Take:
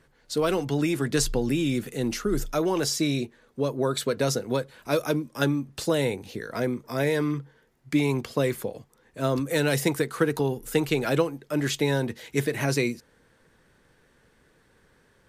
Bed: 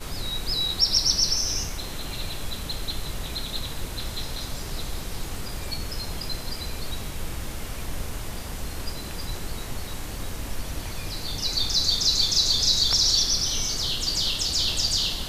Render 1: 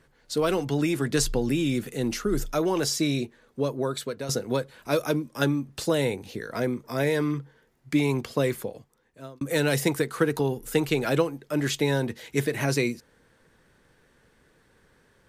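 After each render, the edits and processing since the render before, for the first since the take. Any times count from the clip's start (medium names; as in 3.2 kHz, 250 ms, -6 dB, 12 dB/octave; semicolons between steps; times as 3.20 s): 3.62–4.29 s: fade out, to -11 dB; 8.50–9.41 s: fade out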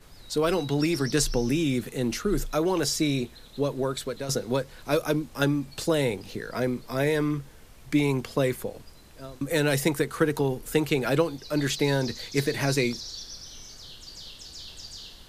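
add bed -18 dB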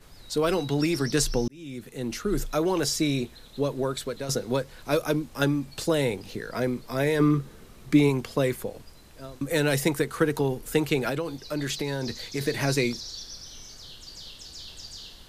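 1.48–2.41 s: fade in; 7.19–8.08 s: small resonant body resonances 200/370/1200/3900 Hz, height 10 dB -> 7 dB, ringing for 25 ms; 11.09–12.41 s: compression 4:1, threshold -25 dBFS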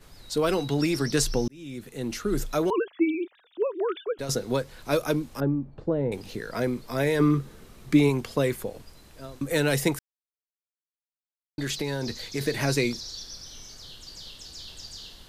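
2.70–4.19 s: formants replaced by sine waves; 5.40–6.12 s: Bessel low-pass 580 Hz; 9.99–11.58 s: mute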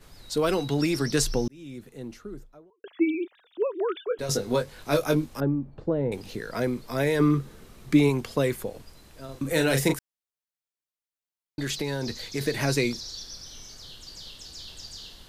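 1.20–2.84 s: studio fade out; 4.09–5.26 s: doubling 20 ms -5 dB; 9.25–9.94 s: doubling 37 ms -6 dB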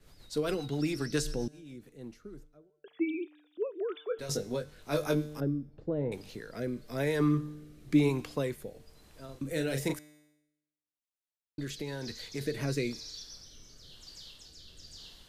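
feedback comb 150 Hz, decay 1 s, harmonics all, mix 50%; rotary cabinet horn 7.5 Hz, later 1 Hz, at 1.59 s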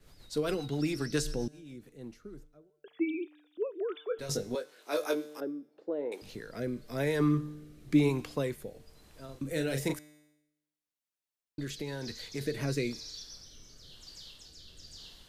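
4.55–6.22 s: high-pass 320 Hz 24 dB/octave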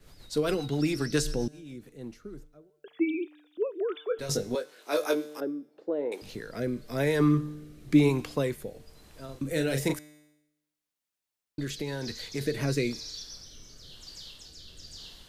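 trim +4 dB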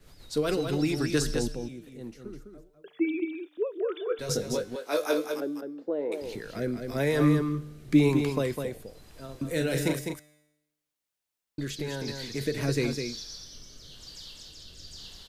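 delay 205 ms -6 dB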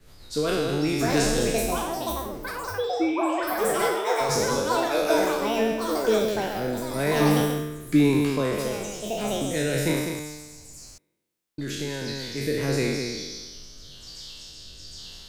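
spectral sustain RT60 1.26 s; ever faster or slower copies 779 ms, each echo +7 st, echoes 3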